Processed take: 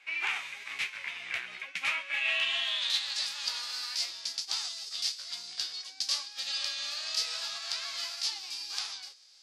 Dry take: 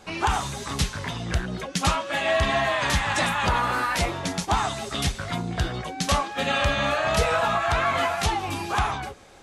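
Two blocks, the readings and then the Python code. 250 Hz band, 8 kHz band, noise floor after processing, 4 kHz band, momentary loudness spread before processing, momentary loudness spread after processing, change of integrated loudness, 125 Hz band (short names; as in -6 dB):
under -30 dB, -5.0 dB, -51 dBFS, -0.5 dB, 7 LU, 8 LU, -7.5 dB, under -40 dB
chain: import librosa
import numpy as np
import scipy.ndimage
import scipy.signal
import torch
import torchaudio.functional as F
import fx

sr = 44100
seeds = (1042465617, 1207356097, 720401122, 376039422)

y = fx.envelope_flatten(x, sr, power=0.6)
y = fx.filter_sweep_bandpass(y, sr, from_hz=2300.0, to_hz=4800.0, start_s=2.11, end_s=3.26, q=5.7)
y = y * 10.0 ** (4.0 / 20.0)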